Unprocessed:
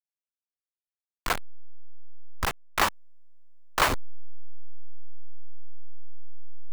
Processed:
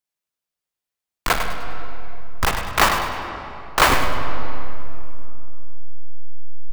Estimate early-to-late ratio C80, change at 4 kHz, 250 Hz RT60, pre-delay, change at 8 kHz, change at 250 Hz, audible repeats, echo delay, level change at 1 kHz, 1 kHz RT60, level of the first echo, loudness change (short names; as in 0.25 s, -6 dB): 4.0 dB, +9.0 dB, 3.7 s, 26 ms, +8.0 dB, +10.0 dB, 2, 0.101 s, +9.5 dB, 2.7 s, -8.0 dB, +7.0 dB